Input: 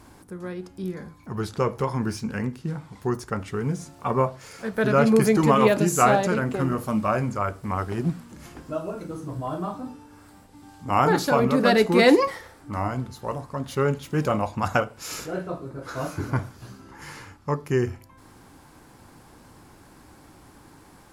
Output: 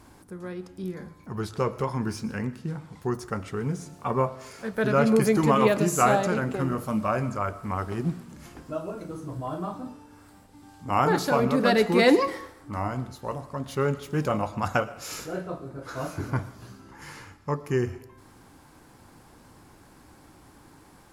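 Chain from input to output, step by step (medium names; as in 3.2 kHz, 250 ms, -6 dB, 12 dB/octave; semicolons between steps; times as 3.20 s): on a send: treble shelf 12 kHz +7.5 dB + reverberation RT60 0.70 s, pre-delay 75 ms, DRR 17 dB; on the sum: trim -2.5 dB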